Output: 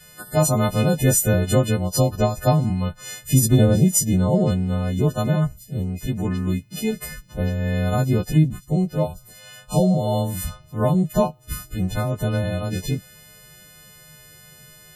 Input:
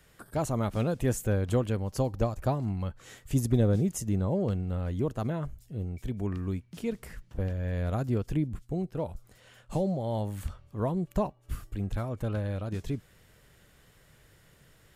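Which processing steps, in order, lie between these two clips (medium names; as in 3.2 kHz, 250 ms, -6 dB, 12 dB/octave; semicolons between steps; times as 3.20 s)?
partials quantised in pitch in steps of 3 st; fifteen-band graphic EQ 160 Hz +10 dB, 630 Hz +4 dB, 4 kHz +3 dB; loudest bins only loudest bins 64; trim +6 dB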